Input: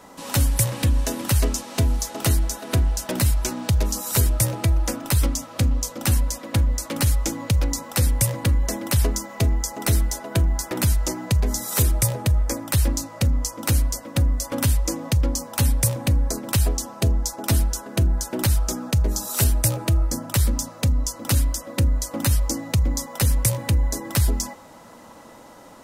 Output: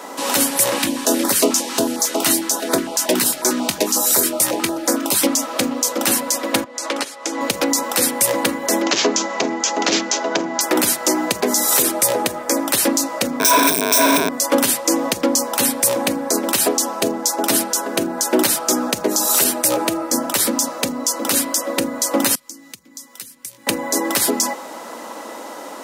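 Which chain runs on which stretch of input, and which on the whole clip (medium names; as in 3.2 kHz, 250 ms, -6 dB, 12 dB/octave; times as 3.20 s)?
0.78–5.27 s: doubling 21 ms -13 dB + step-sequenced notch 11 Hz 480–2800 Hz
6.64–7.41 s: compression, threshold -28 dBFS + band-pass 330–6700 Hz
8.82–10.61 s: high-pass 140 Hz 24 dB/octave + careless resampling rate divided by 3×, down none, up filtered + transformer saturation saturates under 800 Hz
13.40–14.29 s: one-bit comparator + rippled EQ curve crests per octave 1.6, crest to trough 14 dB
22.35–23.67 s: compression 2:1, threshold -30 dBFS + amplifier tone stack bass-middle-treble 6-0-2 + tape noise reduction on one side only encoder only
whole clip: high-pass 270 Hz 24 dB/octave; loudness maximiser +17 dB; trim -3.5 dB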